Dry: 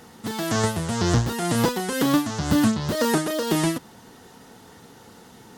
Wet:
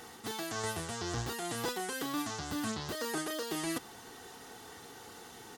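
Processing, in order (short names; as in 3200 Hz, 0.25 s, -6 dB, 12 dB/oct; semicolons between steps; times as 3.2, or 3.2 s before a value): low shelf 480 Hz -8 dB; comb 2.6 ms, depth 38%; reverse; compressor, threshold -33 dBFS, peak gain reduction 14 dB; reverse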